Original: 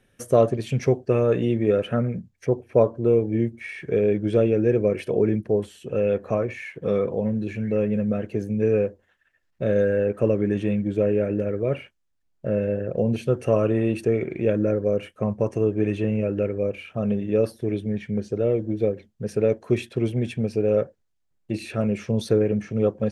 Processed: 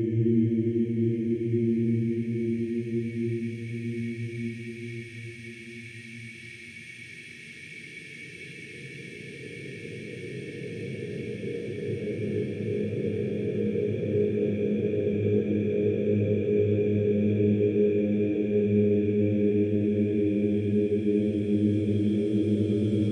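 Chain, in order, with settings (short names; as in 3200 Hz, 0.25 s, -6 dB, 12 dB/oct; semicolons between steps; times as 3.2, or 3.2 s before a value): band shelf 1000 Hz -12 dB 2.5 oct; Paulstretch 29×, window 0.50 s, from 3.44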